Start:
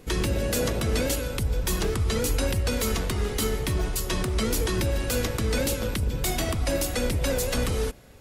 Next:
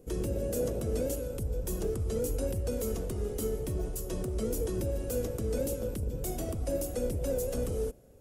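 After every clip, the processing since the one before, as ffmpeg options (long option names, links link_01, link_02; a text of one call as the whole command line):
ffmpeg -i in.wav -af "equalizer=frequency=500:width_type=o:width=1:gain=7,equalizer=frequency=1000:width_type=o:width=1:gain=-8,equalizer=frequency=2000:width_type=o:width=1:gain=-11,equalizer=frequency=4000:width_type=o:width=1:gain=-11,volume=-7.5dB" out.wav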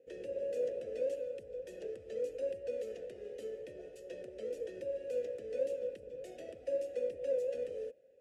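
ffmpeg -i in.wav -filter_complex "[0:a]adynamicsmooth=sensitivity=6:basefreq=4700,crystalizer=i=4.5:c=0,asplit=3[link_01][link_02][link_03];[link_01]bandpass=frequency=530:width_type=q:width=8,volume=0dB[link_04];[link_02]bandpass=frequency=1840:width_type=q:width=8,volume=-6dB[link_05];[link_03]bandpass=frequency=2480:width_type=q:width=8,volume=-9dB[link_06];[link_04][link_05][link_06]amix=inputs=3:normalize=0,volume=1dB" out.wav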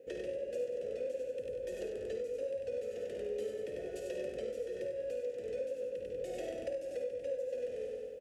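ffmpeg -i in.wav -filter_complex "[0:a]asplit=2[link_01][link_02];[link_02]aecho=0:1:96|192|288|384|480|576:0.631|0.309|0.151|0.0742|0.0364|0.0178[link_03];[link_01][link_03]amix=inputs=2:normalize=0,acompressor=threshold=-46dB:ratio=5,asplit=2[link_04][link_05];[link_05]aecho=0:1:53|72:0.376|0.355[link_06];[link_04][link_06]amix=inputs=2:normalize=0,volume=8.5dB" out.wav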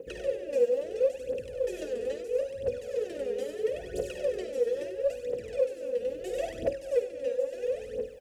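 ffmpeg -i in.wav -af "aphaser=in_gain=1:out_gain=1:delay=4.4:decay=0.78:speed=0.75:type=triangular,volume=3.5dB" out.wav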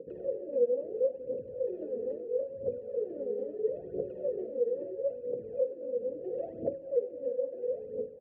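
ffmpeg -i in.wav -af "asuperpass=centerf=250:order=4:qfactor=0.62" out.wav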